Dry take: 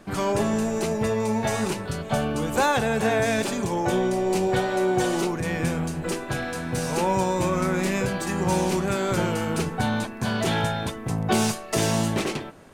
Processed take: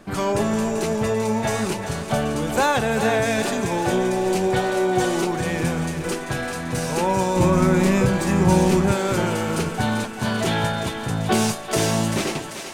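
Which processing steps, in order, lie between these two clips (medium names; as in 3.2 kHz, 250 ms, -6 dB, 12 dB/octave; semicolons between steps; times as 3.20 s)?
7.36–8.92 s: bass shelf 360 Hz +8 dB; thinning echo 390 ms, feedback 62%, high-pass 570 Hz, level -8 dB; trim +2 dB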